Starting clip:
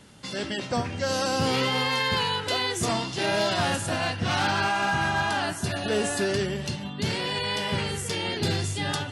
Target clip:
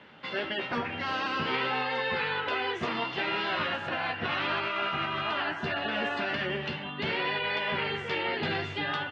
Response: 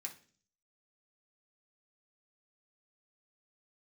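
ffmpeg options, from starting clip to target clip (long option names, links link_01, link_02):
-filter_complex "[0:a]highpass=frequency=700:poles=1,afftfilt=real='re*lt(hypot(re,im),0.158)':imag='im*lt(hypot(re,im),0.158)':win_size=1024:overlap=0.75,lowpass=frequency=2900:width=0.5412,lowpass=frequency=2900:width=1.3066,alimiter=level_in=2dB:limit=-24dB:level=0:latency=1:release=188,volume=-2dB,asplit=2[link_01][link_02];[link_02]adelay=13,volume=-7dB[link_03];[link_01][link_03]amix=inputs=2:normalize=0,volume=5dB"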